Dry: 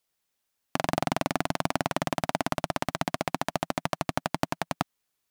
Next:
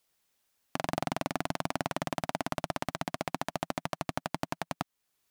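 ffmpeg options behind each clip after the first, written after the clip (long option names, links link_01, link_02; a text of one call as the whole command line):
ffmpeg -i in.wav -af "alimiter=limit=-17dB:level=0:latency=1:release=480,volume=4dB" out.wav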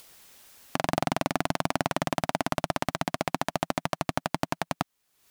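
ffmpeg -i in.wav -af "acompressor=mode=upward:threshold=-44dB:ratio=2.5,volume=5.5dB" out.wav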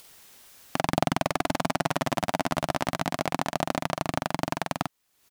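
ffmpeg -i in.wav -filter_complex "[0:a]asplit=2[link_01][link_02];[link_02]adelay=46,volume=-4.5dB[link_03];[link_01][link_03]amix=inputs=2:normalize=0" out.wav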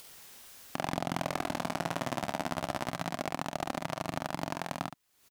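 ffmpeg -i in.wav -filter_complex "[0:a]asplit=2[link_01][link_02];[link_02]aecho=0:1:29|70:0.211|0.316[link_03];[link_01][link_03]amix=inputs=2:normalize=0,alimiter=limit=-15dB:level=0:latency=1:release=442" out.wav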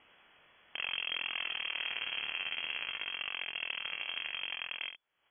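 ffmpeg -i in.wav -af "flanger=delay=19.5:depth=7.6:speed=2,lowpass=frequency=2900:width_type=q:width=0.5098,lowpass=frequency=2900:width_type=q:width=0.6013,lowpass=frequency=2900:width_type=q:width=0.9,lowpass=frequency=2900:width_type=q:width=2.563,afreqshift=-3400" out.wav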